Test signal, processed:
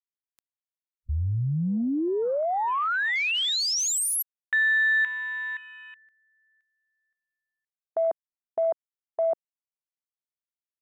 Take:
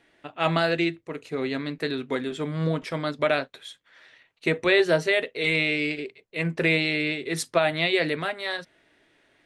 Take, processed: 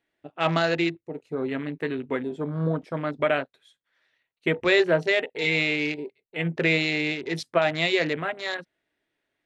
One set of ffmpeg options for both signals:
-af "afwtdn=0.0178"

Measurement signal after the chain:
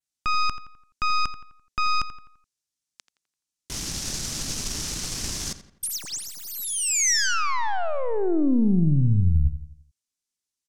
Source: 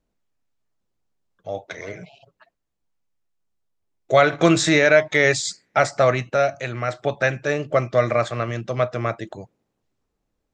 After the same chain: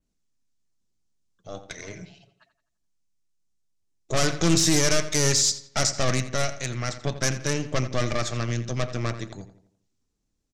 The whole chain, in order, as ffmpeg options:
-filter_complex "[0:a]acrossover=split=1500[s0][s1];[s1]aeval=exprs='0.0668*(abs(mod(val(0)/0.0668+3,4)-2)-1)':c=same[s2];[s0][s2]amix=inputs=2:normalize=0,acontrast=33,aeval=exprs='(tanh(3.98*val(0)+0.8)-tanh(0.8))/3.98':c=same,firequalizer=gain_entry='entry(250,0);entry(520,-9);entry(5900,8)':delay=0.05:min_phase=1,asplit=2[s3][s4];[s4]adelay=85,lowpass=f=3600:p=1,volume=0.251,asplit=2[s5][s6];[s6]adelay=85,lowpass=f=3600:p=1,volume=0.45,asplit=2[s7][s8];[s8]adelay=85,lowpass=f=3600:p=1,volume=0.45,asplit=2[s9][s10];[s10]adelay=85,lowpass=f=3600:p=1,volume=0.45,asplit=2[s11][s12];[s12]adelay=85,lowpass=f=3600:p=1,volume=0.45[s13];[s3][s5][s7][s9][s11][s13]amix=inputs=6:normalize=0,adynamicequalizer=threshold=0.0126:dfrequency=5500:dqfactor=1.8:tfrequency=5500:tqfactor=1.8:attack=5:release=100:ratio=0.375:range=3:mode=boostabove:tftype=bell,lowpass=8200,volume=0.841"

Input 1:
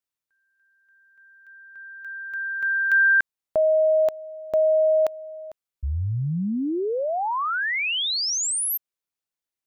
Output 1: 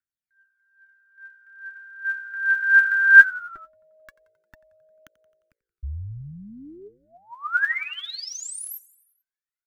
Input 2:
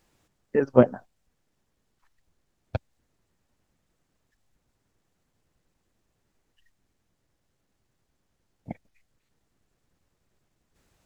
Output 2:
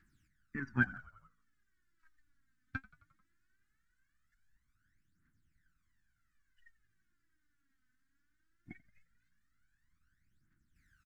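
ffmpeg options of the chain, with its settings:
-filter_complex "[0:a]firequalizer=gain_entry='entry(300,0);entry(520,-30);entry(1500,14);entry(2600,-2)':delay=0.05:min_phase=1,aphaser=in_gain=1:out_gain=1:delay=4:decay=0.74:speed=0.19:type=triangular,asplit=2[s0][s1];[s1]asplit=5[s2][s3][s4][s5][s6];[s2]adelay=88,afreqshift=-56,volume=0.0891[s7];[s3]adelay=176,afreqshift=-112,volume=0.0562[s8];[s4]adelay=264,afreqshift=-168,volume=0.0355[s9];[s5]adelay=352,afreqshift=-224,volume=0.0224[s10];[s6]adelay=440,afreqshift=-280,volume=0.014[s11];[s7][s8][s9][s10][s11]amix=inputs=5:normalize=0[s12];[s0][s12]amix=inputs=2:normalize=0,volume=0.266"

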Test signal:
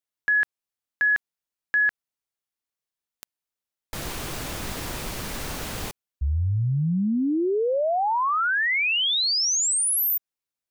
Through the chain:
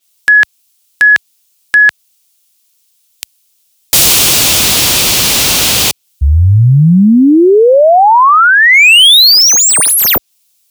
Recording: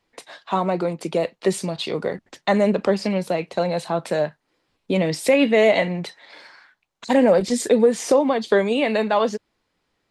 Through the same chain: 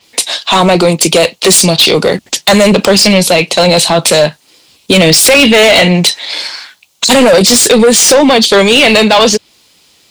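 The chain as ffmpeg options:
-filter_complex "[0:a]aexciter=amount=4.9:drive=4.7:freq=2500,asplit=2[s0][s1];[s1]asoftclip=type=hard:threshold=0.141,volume=0.631[s2];[s0][s2]amix=inputs=2:normalize=0,highpass=59,apsyclip=5.96,adynamicequalizer=threshold=0.141:dfrequency=5800:dqfactor=0.7:tfrequency=5800:tqfactor=0.7:attack=5:release=100:ratio=0.438:range=3.5:mode=cutabove:tftype=highshelf,volume=0.794"

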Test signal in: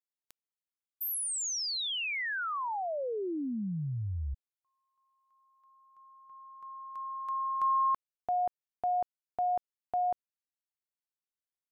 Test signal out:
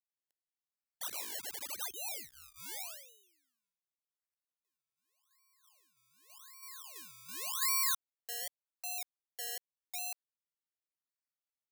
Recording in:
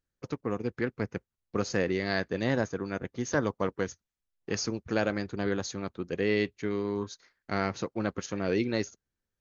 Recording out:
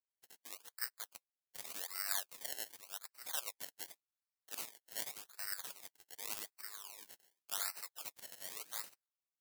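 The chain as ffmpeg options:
-af "highpass=f=760:w=0.5412,highpass=f=760:w=1.3066,acrusher=samples=25:mix=1:aa=0.000001:lfo=1:lforange=25:lforate=0.87,aderivative,volume=1.41"

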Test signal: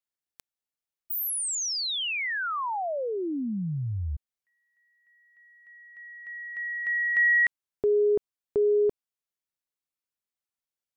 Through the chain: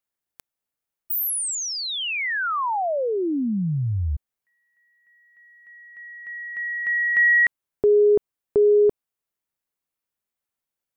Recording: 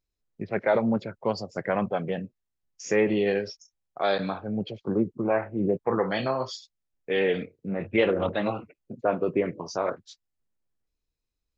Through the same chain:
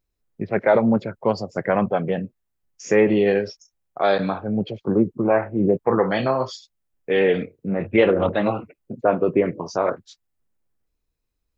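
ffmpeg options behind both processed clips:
-af "equalizer=f=4800:t=o:w=2:g=-5.5,volume=2.11"

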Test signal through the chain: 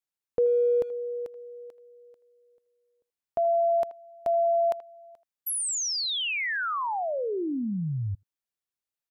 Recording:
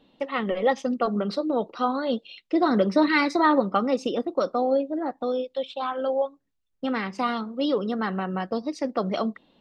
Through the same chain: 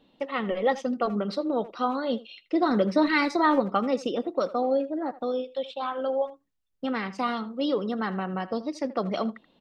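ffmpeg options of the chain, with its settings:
-filter_complex "[0:a]asplit=2[s0][s1];[s1]adelay=80,highpass=300,lowpass=3400,asoftclip=type=hard:threshold=0.133,volume=0.158[s2];[s0][s2]amix=inputs=2:normalize=0,volume=0.794"

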